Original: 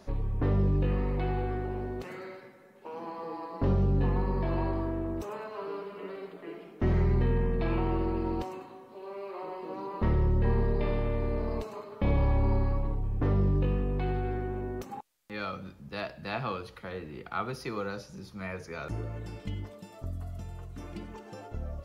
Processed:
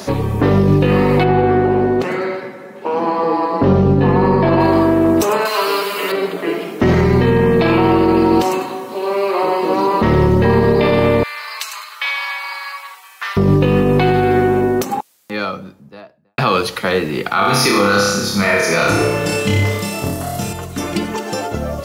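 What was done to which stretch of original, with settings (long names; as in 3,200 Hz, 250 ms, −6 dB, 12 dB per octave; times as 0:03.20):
0:01.23–0:04.59: low-pass filter 1,300 Hz → 2,300 Hz 6 dB per octave
0:05.45–0:06.12: spectral tilt +4 dB per octave
0:11.23–0:13.37: high-pass filter 1,400 Hz 24 dB per octave
0:14.32–0:16.38: fade out and dull
0:17.33–0:20.53: flutter between parallel walls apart 5.1 metres, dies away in 0.85 s
whole clip: high-pass filter 150 Hz 12 dB per octave; high-shelf EQ 3,400 Hz +9.5 dB; boost into a limiter +26 dB; level −3.5 dB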